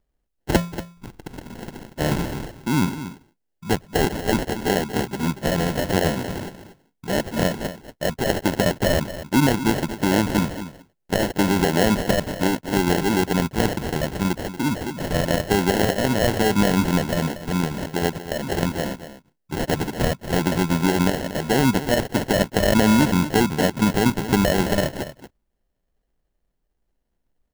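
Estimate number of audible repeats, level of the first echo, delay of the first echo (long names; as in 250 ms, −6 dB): 1, −12.5 dB, 235 ms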